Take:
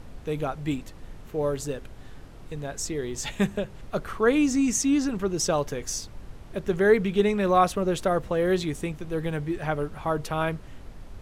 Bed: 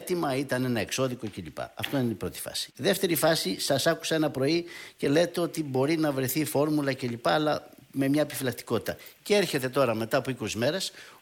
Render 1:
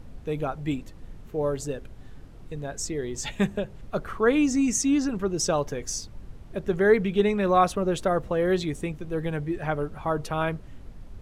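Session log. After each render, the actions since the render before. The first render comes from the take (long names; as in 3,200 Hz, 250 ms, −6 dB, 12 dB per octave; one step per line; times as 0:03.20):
broadband denoise 6 dB, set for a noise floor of −44 dBFS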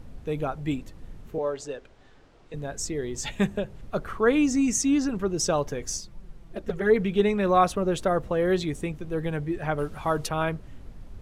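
0:01.38–0:02.54: three-way crossover with the lows and the highs turned down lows −14 dB, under 350 Hz, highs −24 dB, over 7,700 Hz
0:05.97–0:06.96: flanger swept by the level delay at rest 7.6 ms, full sweep at −14.5 dBFS
0:09.78–0:10.29: high-shelf EQ 2,100 Hz +9 dB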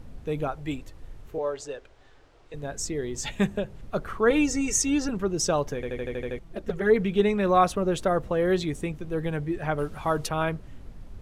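0:00.48–0:02.63: parametric band 200 Hz −10.5 dB
0:04.30–0:05.09: comb filter 2.2 ms, depth 90%
0:05.75: stutter in place 0.08 s, 8 plays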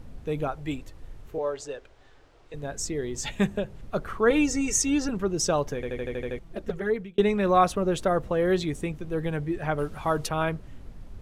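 0:06.64–0:07.18: fade out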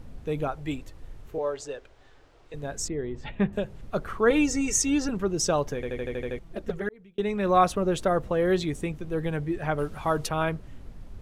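0:02.88–0:03.53: high-frequency loss of the air 440 metres
0:06.89–0:07.57: fade in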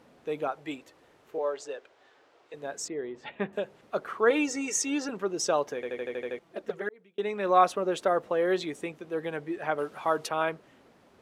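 high-pass filter 370 Hz 12 dB per octave
high-shelf EQ 5,500 Hz −7 dB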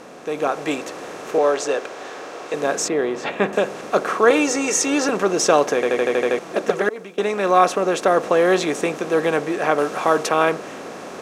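compressor on every frequency bin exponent 0.6
automatic gain control gain up to 8.5 dB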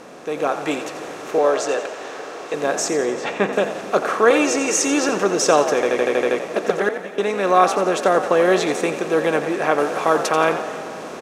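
echo with shifted repeats 87 ms, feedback 48%, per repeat +60 Hz, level −11 dB
comb and all-pass reverb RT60 3.7 s, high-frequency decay 0.85×, pre-delay 100 ms, DRR 15 dB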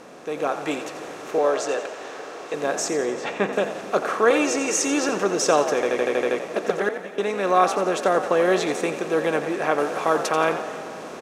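level −3.5 dB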